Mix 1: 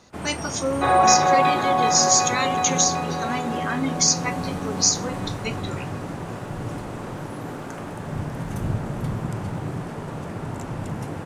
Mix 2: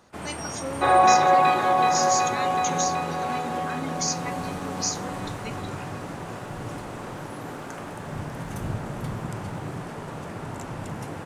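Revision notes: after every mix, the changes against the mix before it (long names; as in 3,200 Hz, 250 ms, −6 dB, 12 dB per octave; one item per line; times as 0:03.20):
speech −9.0 dB
first sound: add low-shelf EQ 450 Hz −5.5 dB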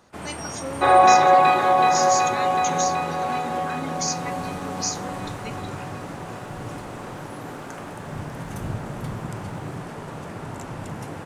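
reverb: on, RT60 0.45 s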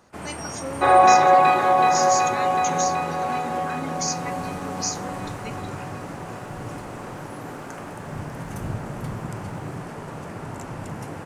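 master: add parametric band 3,600 Hz −4 dB 0.46 octaves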